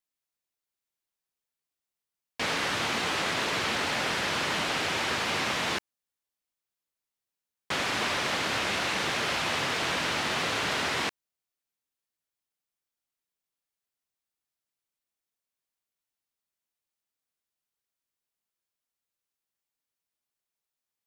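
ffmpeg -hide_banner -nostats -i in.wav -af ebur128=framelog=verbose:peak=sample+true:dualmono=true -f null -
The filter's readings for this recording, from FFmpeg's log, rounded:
Integrated loudness:
  I:         -24.8 LUFS
  Threshold: -34.9 LUFS
Loudness range:
  LRA:         5.7 LU
  Threshold: -46.6 LUFS
  LRA low:   -30.2 LUFS
  LRA high:  -24.5 LUFS
Sample peak:
  Peak:      -16.3 dBFS
True peak:
  Peak:      -16.2 dBFS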